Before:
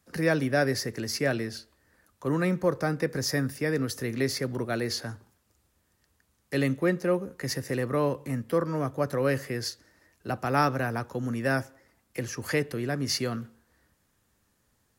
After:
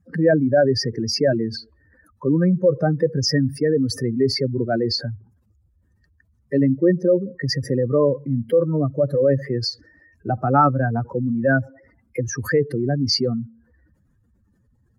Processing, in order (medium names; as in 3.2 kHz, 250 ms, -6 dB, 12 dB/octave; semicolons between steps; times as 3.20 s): spectral contrast enhancement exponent 2.6; trim +9 dB